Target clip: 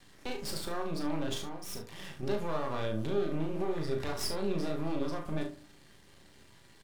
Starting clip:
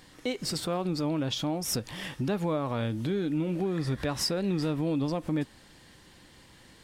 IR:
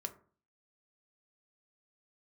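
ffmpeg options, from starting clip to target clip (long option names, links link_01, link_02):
-filter_complex "[0:a]aeval=exprs='max(val(0),0)':channel_layout=same,asettb=1/sr,asplit=3[link_01][link_02][link_03];[link_01]atrim=end=1.394[link_04];[link_02]atrim=start=1.39:end=2.23,asetpts=PTS-STARTPTS,afade=type=in:duration=0.004:curve=qsin,afade=type=out:start_time=0.836:duration=0.004:curve=qsin,acompressor=threshold=-40dB:ratio=2[link_05];[link_03]atrim=start=2.226[link_06];[link_04][link_05]acrossfade=duration=0.004:curve1=hsin:curve2=qsin[link_07];[link_07][link_06]acrossfade=duration=0.004:curve1=qsin:curve2=hsin,aecho=1:1:37|70:0.501|0.237[link_08];[1:a]atrim=start_sample=2205[link_09];[link_08][link_09]afir=irnorm=-1:irlink=0"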